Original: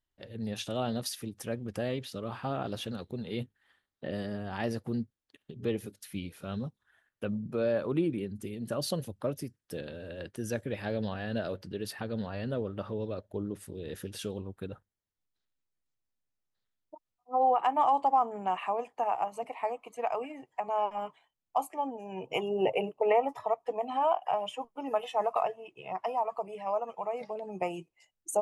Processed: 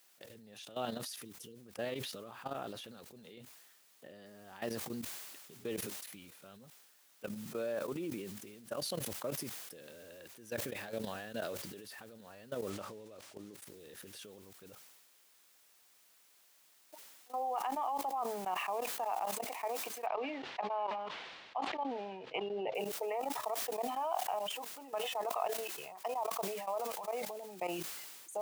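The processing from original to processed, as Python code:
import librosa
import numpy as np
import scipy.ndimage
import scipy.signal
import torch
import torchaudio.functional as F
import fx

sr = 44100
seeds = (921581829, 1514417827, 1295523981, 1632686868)

y = fx.spec_erase(x, sr, start_s=1.25, length_s=0.32, low_hz=510.0, high_hz=2700.0)
y = fx.noise_floor_step(y, sr, seeds[0], at_s=4.26, before_db=-60, after_db=-54, tilt_db=0.0)
y = fx.running_max(y, sr, window=3, at=(12.7, 13.54))
y = fx.lowpass(y, sr, hz=3700.0, slope=24, at=(20.06, 22.75))
y = fx.level_steps(y, sr, step_db=16)
y = fx.highpass(y, sr, hz=430.0, slope=6)
y = fx.sustainer(y, sr, db_per_s=33.0)
y = y * librosa.db_to_amplitude(-2.0)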